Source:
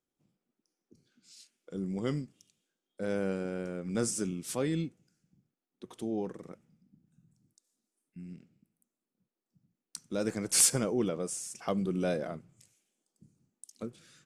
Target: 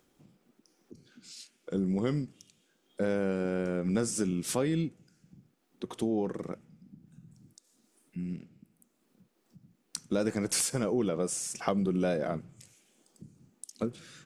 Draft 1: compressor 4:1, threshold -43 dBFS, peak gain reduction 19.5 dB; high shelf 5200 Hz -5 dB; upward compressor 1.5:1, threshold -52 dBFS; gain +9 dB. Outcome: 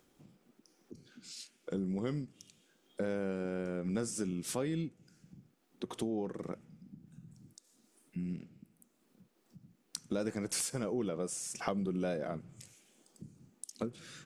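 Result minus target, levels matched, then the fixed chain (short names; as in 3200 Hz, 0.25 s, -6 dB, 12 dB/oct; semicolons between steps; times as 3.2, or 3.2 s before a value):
compressor: peak gain reduction +6 dB
compressor 4:1, threshold -35 dBFS, peak gain reduction 13.5 dB; high shelf 5200 Hz -5 dB; upward compressor 1.5:1, threshold -52 dBFS; gain +9 dB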